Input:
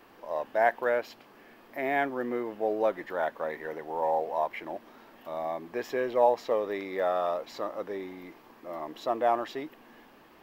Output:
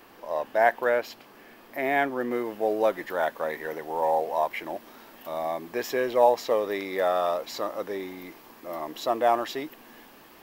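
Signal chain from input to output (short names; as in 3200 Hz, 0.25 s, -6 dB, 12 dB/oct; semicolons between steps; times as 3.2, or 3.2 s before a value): high shelf 4500 Hz +6.5 dB, from 2.31 s +12 dB; gain +3 dB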